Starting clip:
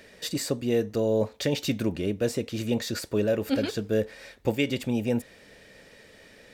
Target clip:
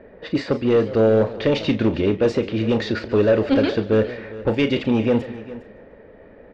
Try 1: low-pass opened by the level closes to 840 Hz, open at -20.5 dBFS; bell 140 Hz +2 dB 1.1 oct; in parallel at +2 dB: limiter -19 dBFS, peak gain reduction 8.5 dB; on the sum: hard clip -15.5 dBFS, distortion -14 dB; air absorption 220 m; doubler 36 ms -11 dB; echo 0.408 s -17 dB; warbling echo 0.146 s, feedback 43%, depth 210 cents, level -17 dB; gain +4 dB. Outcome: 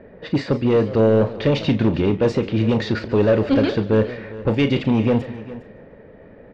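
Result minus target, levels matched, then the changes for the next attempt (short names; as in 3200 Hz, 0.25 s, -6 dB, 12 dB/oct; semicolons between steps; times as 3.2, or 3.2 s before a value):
125 Hz band +4.0 dB
change: bell 140 Hz -6 dB 1.1 oct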